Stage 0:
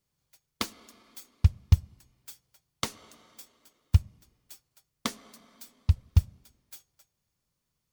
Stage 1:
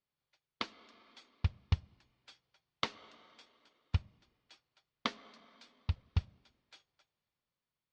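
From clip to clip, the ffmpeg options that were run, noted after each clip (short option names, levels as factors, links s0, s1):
-af "lowpass=f=4200:w=0.5412,lowpass=f=4200:w=1.3066,lowshelf=f=220:g=-12,dynaudnorm=f=140:g=11:m=1.78,volume=0.501"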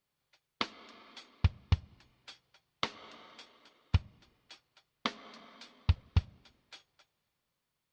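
-af "alimiter=limit=0.0794:level=0:latency=1:release=314,volume=2.24"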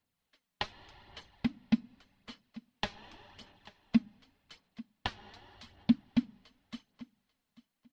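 -af "afreqshift=-320,aphaser=in_gain=1:out_gain=1:delay=4.9:decay=0.44:speed=0.86:type=sinusoidal,aecho=1:1:840|1680:0.1|0.017,volume=0.794"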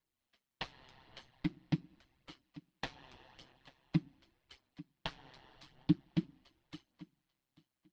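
-af "aeval=exprs='val(0)*sin(2*PI*66*n/s)':c=same,flanger=delay=1.8:depth=7.8:regen=-40:speed=0.45:shape=triangular,volume=1.26"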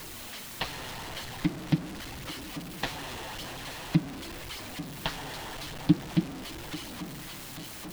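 -af "aeval=exprs='val(0)+0.5*0.00841*sgn(val(0))':c=same,volume=2.24"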